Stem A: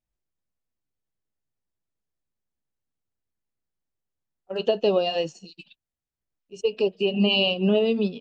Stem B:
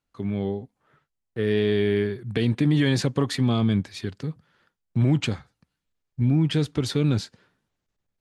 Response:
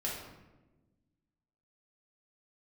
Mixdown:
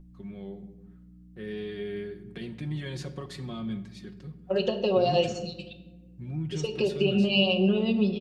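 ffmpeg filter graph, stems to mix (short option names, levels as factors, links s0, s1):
-filter_complex "[0:a]acompressor=threshold=0.0447:ratio=6,aeval=exprs='val(0)+0.00282*(sin(2*PI*60*n/s)+sin(2*PI*2*60*n/s)/2+sin(2*PI*3*60*n/s)/3+sin(2*PI*4*60*n/s)/4+sin(2*PI*5*60*n/s)/5)':c=same,volume=1.06,asplit=2[s0][s1];[s1]volume=0.422[s2];[1:a]volume=0.141,asplit=2[s3][s4];[s4]volume=0.316[s5];[2:a]atrim=start_sample=2205[s6];[s2][s5]amix=inputs=2:normalize=0[s7];[s7][s6]afir=irnorm=-1:irlink=0[s8];[s0][s3][s8]amix=inputs=3:normalize=0,aecho=1:1:5.5:0.72"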